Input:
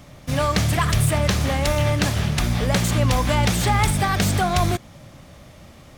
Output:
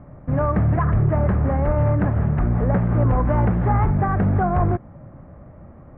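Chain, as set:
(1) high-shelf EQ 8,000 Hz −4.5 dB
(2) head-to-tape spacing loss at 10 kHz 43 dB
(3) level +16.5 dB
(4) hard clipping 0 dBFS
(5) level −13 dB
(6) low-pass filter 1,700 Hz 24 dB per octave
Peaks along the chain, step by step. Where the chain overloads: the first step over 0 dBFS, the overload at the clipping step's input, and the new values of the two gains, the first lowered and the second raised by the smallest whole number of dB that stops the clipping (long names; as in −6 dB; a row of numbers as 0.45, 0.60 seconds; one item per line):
−10.0, −11.0, +5.5, 0.0, −13.0, −11.5 dBFS
step 3, 5.5 dB
step 3 +10.5 dB, step 5 −7 dB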